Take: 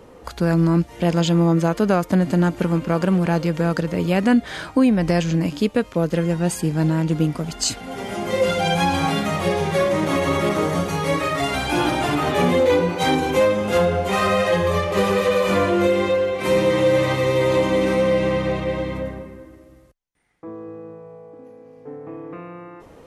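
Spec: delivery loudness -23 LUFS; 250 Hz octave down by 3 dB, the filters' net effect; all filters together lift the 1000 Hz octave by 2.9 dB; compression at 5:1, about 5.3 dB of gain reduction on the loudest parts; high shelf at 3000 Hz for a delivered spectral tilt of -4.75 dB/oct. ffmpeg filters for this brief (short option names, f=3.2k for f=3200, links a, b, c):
-af "equalizer=f=250:t=o:g=-5,equalizer=f=1k:t=o:g=3.5,highshelf=f=3k:g=5,acompressor=threshold=-19dB:ratio=5,volume=0.5dB"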